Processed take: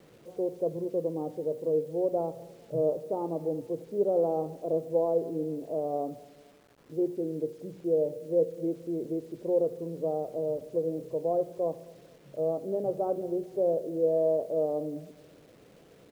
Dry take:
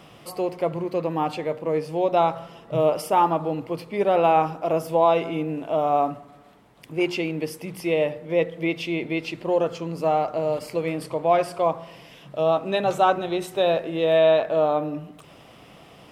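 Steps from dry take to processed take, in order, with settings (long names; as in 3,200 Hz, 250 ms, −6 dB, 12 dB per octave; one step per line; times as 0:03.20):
transistor ladder low-pass 560 Hz, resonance 50%
repeating echo 226 ms, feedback 45%, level −22.5 dB
bit-depth reduction 10 bits, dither none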